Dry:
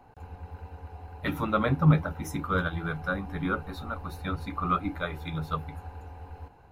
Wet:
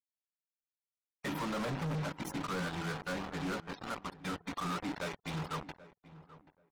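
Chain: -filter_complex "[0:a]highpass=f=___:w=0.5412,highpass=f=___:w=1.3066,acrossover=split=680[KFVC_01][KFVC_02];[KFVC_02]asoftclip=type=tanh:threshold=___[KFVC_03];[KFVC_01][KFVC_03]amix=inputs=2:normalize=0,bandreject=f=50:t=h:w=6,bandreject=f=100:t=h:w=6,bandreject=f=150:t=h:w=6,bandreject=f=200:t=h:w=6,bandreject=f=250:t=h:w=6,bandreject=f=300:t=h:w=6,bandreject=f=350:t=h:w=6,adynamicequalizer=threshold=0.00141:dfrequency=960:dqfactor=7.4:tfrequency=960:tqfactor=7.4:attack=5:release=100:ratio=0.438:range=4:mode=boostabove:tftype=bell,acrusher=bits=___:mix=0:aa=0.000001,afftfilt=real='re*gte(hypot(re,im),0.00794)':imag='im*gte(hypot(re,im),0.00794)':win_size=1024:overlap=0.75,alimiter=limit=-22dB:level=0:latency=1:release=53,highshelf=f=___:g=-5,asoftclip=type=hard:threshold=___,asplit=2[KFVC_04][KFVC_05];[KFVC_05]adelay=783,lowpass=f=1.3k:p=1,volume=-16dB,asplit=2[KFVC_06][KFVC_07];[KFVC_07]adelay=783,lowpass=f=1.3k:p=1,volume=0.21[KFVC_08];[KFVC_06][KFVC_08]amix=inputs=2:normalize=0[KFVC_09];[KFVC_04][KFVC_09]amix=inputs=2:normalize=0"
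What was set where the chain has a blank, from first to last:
130, 130, -31.5dB, 5, 6.4k, -33.5dB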